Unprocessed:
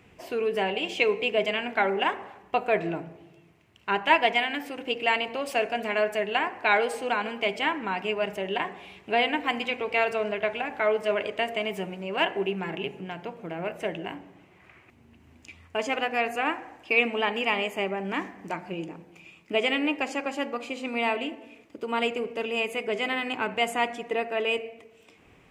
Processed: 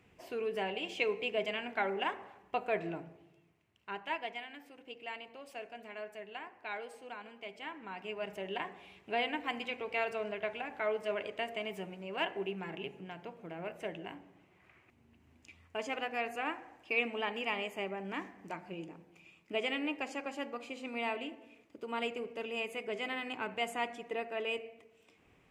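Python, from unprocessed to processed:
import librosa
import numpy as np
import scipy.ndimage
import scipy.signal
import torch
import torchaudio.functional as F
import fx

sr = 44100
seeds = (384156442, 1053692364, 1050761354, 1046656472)

y = fx.gain(x, sr, db=fx.line((3.05, -9.0), (4.43, -19.0), (7.52, -19.0), (8.41, -9.5)))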